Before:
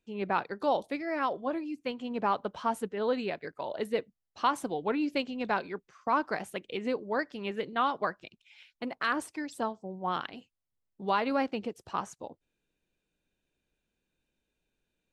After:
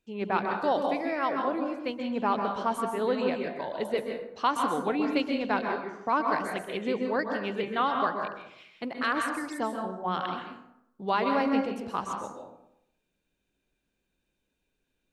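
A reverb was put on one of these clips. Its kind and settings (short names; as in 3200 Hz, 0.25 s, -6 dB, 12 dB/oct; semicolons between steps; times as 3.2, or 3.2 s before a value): plate-style reverb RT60 0.77 s, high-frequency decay 0.55×, pre-delay 0.115 s, DRR 2.5 dB; gain +1 dB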